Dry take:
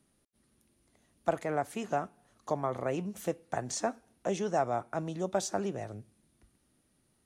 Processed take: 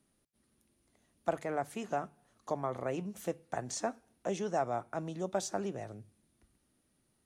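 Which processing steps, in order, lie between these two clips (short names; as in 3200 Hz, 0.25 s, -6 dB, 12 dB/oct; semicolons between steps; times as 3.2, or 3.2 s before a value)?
notches 50/100/150 Hz; gain -3 dB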